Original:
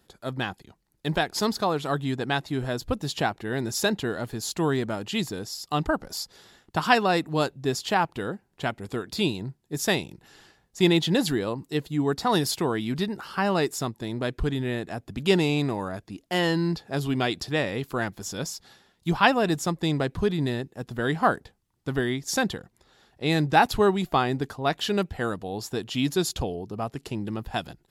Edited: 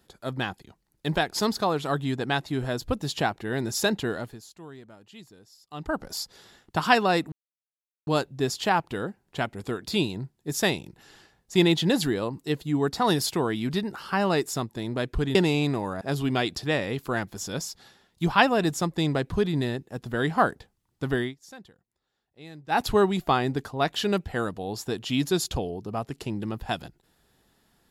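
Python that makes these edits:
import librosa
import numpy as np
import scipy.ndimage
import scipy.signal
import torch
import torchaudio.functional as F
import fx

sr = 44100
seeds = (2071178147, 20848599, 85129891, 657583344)

y = fx.edit(x, sr, fx.fade_down_up(start_s=4.16, length_s=1.84, db=-19.5, fade_s=0.38, curve='qua'),
    fx.insert_silence(at_s=7.32, length_s=0.75),
    fx.cut(start_s=14.6, length_s=0.7),
    fx.cut(start_s=15.96, length_s=0.9),
    fx.fade_down_up(start_s=22.06, length_s=1.61, db=-21.0, fade_s=0.14), tone=tone)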